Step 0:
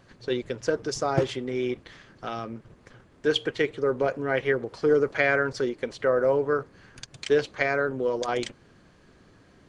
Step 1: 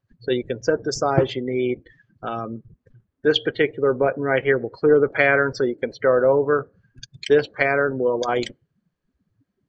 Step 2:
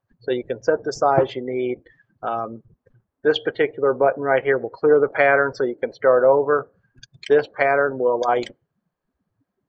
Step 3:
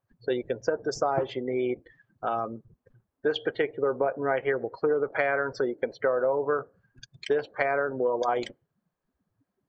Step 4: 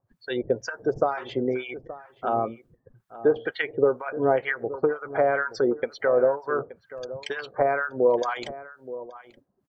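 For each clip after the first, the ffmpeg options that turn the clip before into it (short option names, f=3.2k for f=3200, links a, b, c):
-af "afftdn=nr=31:nf=-39,volume=5.5dB"
-af "equalizer=f=820:w=0.67:g=12.5,volume=-6.5dB"
-af "acompressor=threshold=-19dB:ratio=6,volume=-3dB"
-filter_complex "[0:a]acrossover=split=1100[a][b];[a]aeval=exprs='val(0)*(1-1/2+1/2*cos(2*PI*2.1*n/s))':c=same[c];[b]aeval=exprs='val(0)*(1-1/2-1/2*cos(2*PI*2.1*n/s))':c=same[d];[c][d]amix=inputs=2:normalize=0,asplit=2[e][f];[f]adelay=874.6,volume=-15dB,highshelf=f=4k:g=-19.7[g];[e][g]amix=inputs=2:normalize=0,volume=7.5dB"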